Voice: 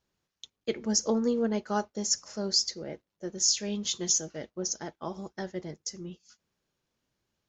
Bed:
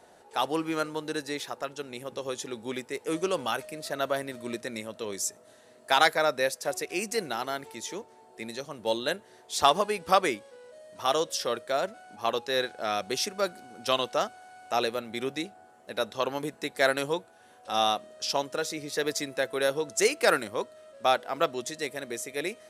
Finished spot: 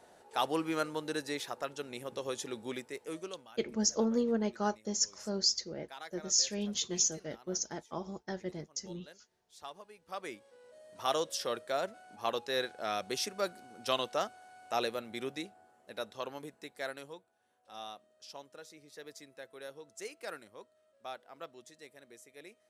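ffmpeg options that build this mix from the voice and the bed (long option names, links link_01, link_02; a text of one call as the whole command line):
ffmpeg -i stem1.wav -i stem2.wav -filter_complex "[0:a]adelay=2900,volume=-3dB[link_01];[1:a]volume=16.5dB,afade=type=out:start_time=2.54:duration=0.94:silence=0.0794328,afade=type=in:start_time=10.07:duration=0.82:silence=0.1,afade=type=out:start_time=14.9:duration=2.31:silence=0.188365[link_02];[link_01][link_02]amix=inputs=2:normalize=0" out.wav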